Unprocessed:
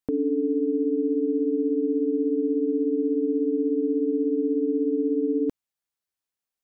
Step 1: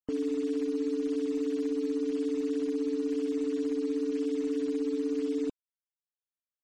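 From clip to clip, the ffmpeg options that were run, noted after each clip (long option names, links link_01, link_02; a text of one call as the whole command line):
ffmpeg -i in.wav -af "acrusher=bits=7:dc=4:mix=0:aa=0.000001,afftfilt=real='re*gte(hypot(re,im),0.00708)':imag='im*gte(hypot(re,im),0.00708)':win_size=1024:overlap=0.75,volume=-6.5dB" out.wav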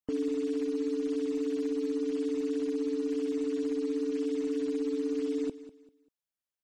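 ffmpeg -i in.wav -af "aecho=1:1:196|392|588:0.178|0.0498|0.0139" out.wav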